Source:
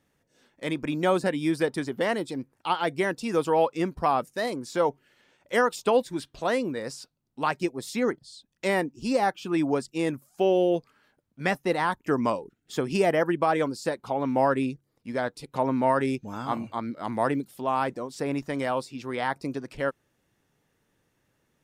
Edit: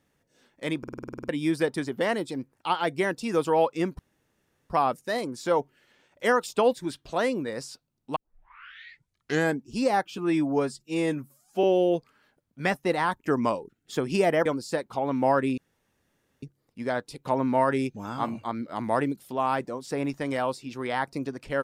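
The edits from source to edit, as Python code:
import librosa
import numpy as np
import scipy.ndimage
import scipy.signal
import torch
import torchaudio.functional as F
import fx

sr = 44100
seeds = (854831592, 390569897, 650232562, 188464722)

y = fx.edit(x, sr, fx.stutter_over(start_s=0.79, slice_s=0.05, count=10),
    fx.insert_room_tone(at_s=3.99, length_s=0.71),
    fx.tape_start(start_s=7.45, length_s=1.51),
    fx.stretch_span(start_s=9.47, length_s=0.97, factor=1.5),
    fx.cut(start_s=13.26, length_s=0.33),
    fx.insert_room_tone(at_s=14.71, length_s=0.85), tone=tone)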